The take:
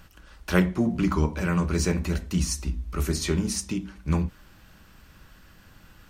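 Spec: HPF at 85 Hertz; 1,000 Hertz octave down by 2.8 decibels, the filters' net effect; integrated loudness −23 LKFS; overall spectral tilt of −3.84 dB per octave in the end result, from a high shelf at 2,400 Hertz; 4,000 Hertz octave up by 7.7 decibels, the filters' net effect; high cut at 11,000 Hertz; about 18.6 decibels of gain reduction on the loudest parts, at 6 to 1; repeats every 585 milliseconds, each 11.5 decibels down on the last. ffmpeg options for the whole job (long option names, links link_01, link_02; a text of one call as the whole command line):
ffmpeg -i in.wav -af "highpass=85,lowpass=11000,equalizer=frequency=1000:width_type=o:gain=-5,highshelf=frequency=2400:gain=4.5,equalizer=frequency=4000:width_type=o:gain=6,acompressor=threshold=-36dB:ratio=6,aecho=1:1:585|1170|1755:0.266|0.0718|0.0194,volume=16dB" out.wav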